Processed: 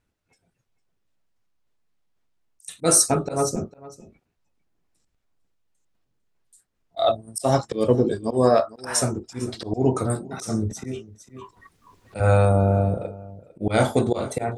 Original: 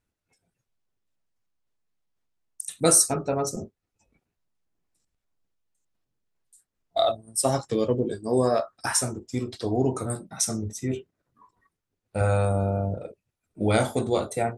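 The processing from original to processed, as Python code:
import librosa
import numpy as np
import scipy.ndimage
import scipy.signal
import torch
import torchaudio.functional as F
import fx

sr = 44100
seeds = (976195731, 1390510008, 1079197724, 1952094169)

y = fx.high_shelf(x, sr, hz=7300.0, db=-8.0)
y = fx.auto_swell(y, sr, attack_ms=140.0)
y = y + 10.0 ** (-19.0 / 20.0) * np.pad(y, (int(452 * sr / 1000.0), 0))[:len(y)]
y = fx.band_squash(y, sr, depth_pct=70, at=(10.71, 12.2))
y = y * librosa.db_to_amplitude(6.0)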